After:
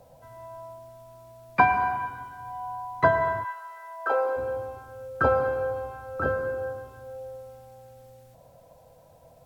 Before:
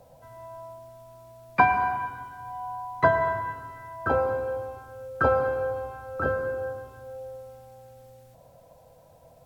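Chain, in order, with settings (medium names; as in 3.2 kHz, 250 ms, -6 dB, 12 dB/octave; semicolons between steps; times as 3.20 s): 3.43–4.36 s: high-pass 830 Hz -> 340 Hz 24 dB/octave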